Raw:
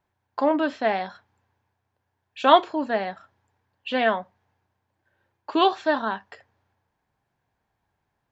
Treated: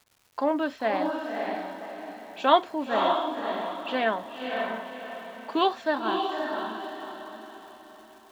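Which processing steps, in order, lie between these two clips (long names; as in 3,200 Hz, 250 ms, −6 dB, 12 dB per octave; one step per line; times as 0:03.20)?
surface crackle 460 per second −44 dBFS
on a send: feedback delay with all-pass diffusion 565 ms, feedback 41%, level −3 dB
on the sum: level −4 dB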